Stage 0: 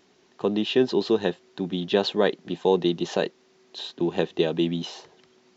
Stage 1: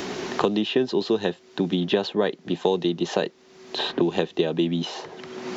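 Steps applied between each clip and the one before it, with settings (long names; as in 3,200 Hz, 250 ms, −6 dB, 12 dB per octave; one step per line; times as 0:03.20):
multiband upward and downward compressor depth 100%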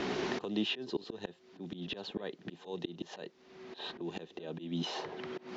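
low-pass that shuts in the quiet parts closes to 2,900 Hz, open at −17.5 dBFS
volume swells 372 ms
echo ahead of the sound 67 ms −17.5 dB
level −3.5 dB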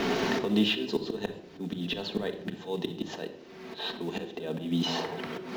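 in parallel at −5 dB: floating-point word with a short mantissa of 2 bits
on the sum: rectangular room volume 2,200 cubic metres, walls furnished, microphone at 1.6 metres
level +2.5 dB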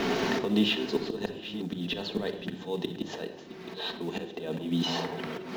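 delay that plays each chunk backwards 544 ms, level −12.5 dB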